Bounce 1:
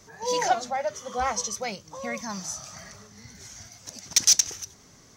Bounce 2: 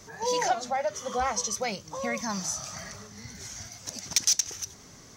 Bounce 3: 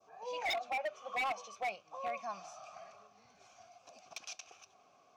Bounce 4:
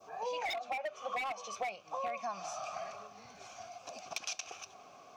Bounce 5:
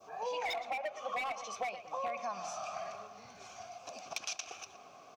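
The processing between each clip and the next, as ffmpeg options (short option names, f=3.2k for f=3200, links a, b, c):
-af "acompressor=threshold=-31dB:ratio=2,volume=3.5dB"
-filter_complex "[0:a]asplit=3[a][b][c];[a]bandpass=f=730:t=q:w=8,volume=0dB[d];[b]bandpass=f=1.09k:t=q:w=8,volume=-6dB[e];[c]bandpass=f=2.44k:t=q:w=8,volume=-9dB[f];[d][e][f]amix=inputs=3:normalize=0,aeval=exprs='0.0251*(abs(mod(val(0)/0.0251+3,4)-2)-1)':c=same,adynamicequalizer=threshold=0.002:dfrequency=2200:dqfactor=0.8:tfrequency=2200:tqfactor=0.8:attack=5:release=100:ratio=0.375:range=3:mode=boostabove:tftype=bell"
-af "acompressor=threshold=-45dB:ratio=10,volume=10.5dB"
-filter_complex "[0:a]asplit=2[a][b];[b]adelay=117,lowpass=f=2.6k:p=1,volume=-11dB,asplit=2[c][d];[d]adelay=117,lowpass=f=2.6k:p=1,volume=0.51,asplit=2[e][f];[f]adelay=117,lowpass=f=2.6k:p=1,volume=0.51,asplit=2[g][h];[h]adelay=117,lowpass=f=2.6k:p=1,volume=0.51,asplit=2[i][j];[j]adelay=117,lowpass=f=2.6k:p=1,volume=0.51[k];[a][c][e][g][i][k]amix=inputs=6:normalize=0"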